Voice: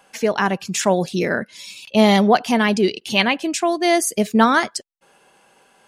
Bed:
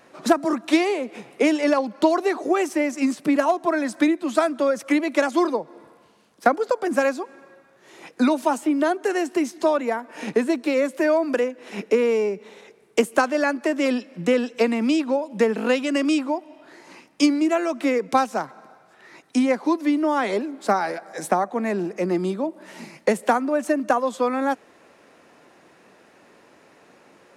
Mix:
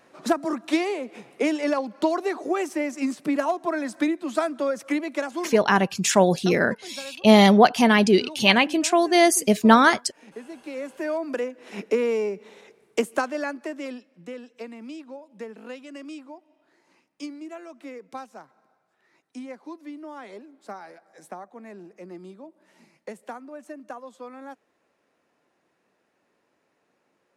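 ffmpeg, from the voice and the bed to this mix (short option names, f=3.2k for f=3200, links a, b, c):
-filter_complex "[0:a]adelay=5300,volume=0dB[a];[1:a]volume=11dB,afade=t=out:st=4.86:d=0.91:silence=0.188365,afade=t=in:st=10.49:d=1.27:silence=0.16788,afade=t=out:st=12.84:d=1.27:silence=0.188365[b];[a][b]amix=inputs=2:normalize=0"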